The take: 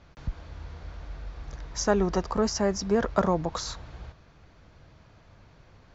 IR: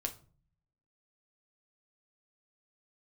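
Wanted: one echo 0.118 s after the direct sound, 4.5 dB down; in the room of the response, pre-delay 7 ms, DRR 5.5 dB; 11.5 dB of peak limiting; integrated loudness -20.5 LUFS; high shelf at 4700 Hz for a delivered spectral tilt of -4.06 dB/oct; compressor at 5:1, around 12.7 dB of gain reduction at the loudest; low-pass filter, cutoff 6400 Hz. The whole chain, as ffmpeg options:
-filter_complex "[0:a]lowpass=6.4k,highshelf=f=4.7k:g=7.5,acompressor=threshold=-32dB:ratio=5,alimiter=level_in=5dB:limit=-24dB:level=0:latency=1,volume=-5dB,aecho=1:1:118:0.596,asplit=2[a][b];[1:a]atrim=start_sample=2205,adelay=7[c];[b][c]afir=irnorm=-1:irlink=0,volume=-6dB[d];[a][d]amix=inputs=2:normalize=0,volume=18dB"

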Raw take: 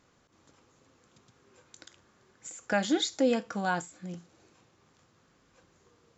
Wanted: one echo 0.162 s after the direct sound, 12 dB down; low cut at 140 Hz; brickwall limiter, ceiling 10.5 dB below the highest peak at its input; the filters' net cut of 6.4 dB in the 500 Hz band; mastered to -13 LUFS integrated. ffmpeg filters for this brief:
-af "highpass=140,equalizer=f=500:t=o:g=-7.5,alimiter=level_in=3dB:limit=-24dB:level=0:latency=1,volume=-3dB,aecho=1:1:162:0.251,volume=25dB"

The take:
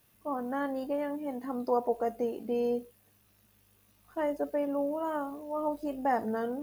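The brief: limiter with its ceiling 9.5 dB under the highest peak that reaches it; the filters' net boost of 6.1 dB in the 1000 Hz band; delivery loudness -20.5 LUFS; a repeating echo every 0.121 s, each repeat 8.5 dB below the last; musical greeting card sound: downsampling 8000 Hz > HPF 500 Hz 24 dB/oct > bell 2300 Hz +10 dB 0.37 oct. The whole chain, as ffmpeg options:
-af "equalizer=f=1k:t=o:g=8,alimiter=limit=-21.5dB:level=0:latency=1,aecho=1:1:121|242|363|484:0.376|0.143|0.0543|0.0206,aresample=8000,aresample=44100,highpass=f=500:w=0.5412,highpass=f=500:w=1.3066,equalizer=f=2.3k:t=o:w=0.37:g=10,volume=12.5dB"

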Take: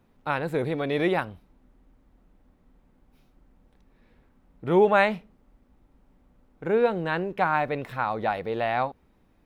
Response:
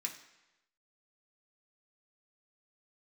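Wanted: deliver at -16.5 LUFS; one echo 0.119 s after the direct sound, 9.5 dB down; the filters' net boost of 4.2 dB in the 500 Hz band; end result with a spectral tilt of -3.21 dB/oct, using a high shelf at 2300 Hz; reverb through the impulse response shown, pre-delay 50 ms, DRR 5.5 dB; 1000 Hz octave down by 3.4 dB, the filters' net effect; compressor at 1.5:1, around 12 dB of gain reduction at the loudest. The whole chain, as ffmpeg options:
-filter_complex "[0:a]equalizer=f=500:t=o:g=7,equalizer=f=1k:t=o:g=-7.5,highshelf=f=2.3k:g=-3.5,acompressor=threshold=-46dB:ratio=1.5,aecho=1:1:119:0.335,asplit=2[a][b];[1:a]atrim=start_sample=2205,adelay=50[c];[b][c]afir=irnorm=-1:irlink=0,volume=-5dB[d];[a][d]amix=inputs=2:normalize=0,volume=16dB"

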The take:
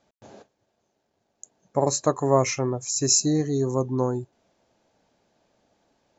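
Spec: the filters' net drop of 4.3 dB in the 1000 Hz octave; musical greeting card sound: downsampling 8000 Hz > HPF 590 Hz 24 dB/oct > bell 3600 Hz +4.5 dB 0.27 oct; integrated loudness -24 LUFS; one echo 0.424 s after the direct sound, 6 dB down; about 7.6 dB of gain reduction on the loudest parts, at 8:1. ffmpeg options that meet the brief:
-af "equalizer=f=1k:t=o:g=-5,acompressor=threshold=-23dB:ratio=8,aecho=1:1:424:0.501,aresample=8000,aresample=44100,highpass=f=590:w=0.5412,highpass=f=590:w=1.3066,equalizer=f=3.6k:t=o:w=0.27:g=4.5,volume=15dB"

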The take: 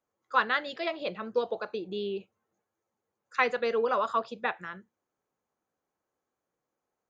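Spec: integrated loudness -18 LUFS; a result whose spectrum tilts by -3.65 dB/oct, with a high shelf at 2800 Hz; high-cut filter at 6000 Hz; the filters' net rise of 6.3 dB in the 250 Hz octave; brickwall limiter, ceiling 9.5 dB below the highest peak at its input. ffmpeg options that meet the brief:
-af "lowpass=6k,equalizer=f=250:t=o:g=8,highshelf=f=2.8k:g=-6,volume=14.5dB,alimiter=limit=-6dB:level=0:latency=1"

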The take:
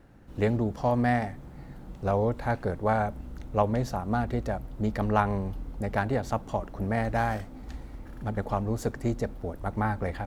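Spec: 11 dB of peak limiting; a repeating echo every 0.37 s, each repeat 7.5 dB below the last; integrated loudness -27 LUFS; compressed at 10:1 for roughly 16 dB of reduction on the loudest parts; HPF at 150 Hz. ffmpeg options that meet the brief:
-af "highpass=150,acompressor=threshold=-35dB:ratio=10,alimiter=level_in=8.5dB:limit=-24dB:level=0:latency=1,volume=-8.5dB,aecho=1:1:370|740|1110|1480|1850:0.422|0.177|0.0744|0.0312|0.0131,volume=17.5dB"

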